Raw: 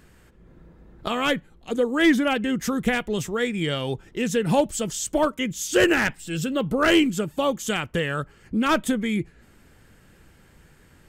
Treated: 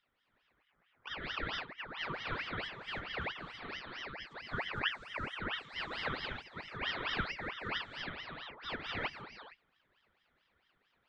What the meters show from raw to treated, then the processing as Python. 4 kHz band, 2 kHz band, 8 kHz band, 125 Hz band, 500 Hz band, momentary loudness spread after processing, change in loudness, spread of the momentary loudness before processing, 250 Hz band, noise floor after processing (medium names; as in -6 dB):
-10.0 dB, -11.5 dB, under -30 dB, -16.5 dB, -23.0 dB, 9 LU, -16.0 dB, 10 LU, -26.5 dB, -77 dBFS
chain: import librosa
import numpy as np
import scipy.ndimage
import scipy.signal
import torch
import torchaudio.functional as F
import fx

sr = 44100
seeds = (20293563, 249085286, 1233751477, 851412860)

y = fx.vowel_filter(x, sr, vowel='a')
y = fx.air_absorb(y, sr, metres=140.0)
y = fx.rev_gated(y, sr, seeds[0], gate_ms=350, shape='rising', drr_db=-4.5)
y = fx.ring_lfo(y, sr, carrier_hz=1600.0, swing_pct=60, hz=4.5)
y = y * 10.0 ** (-6.0 / 20.0)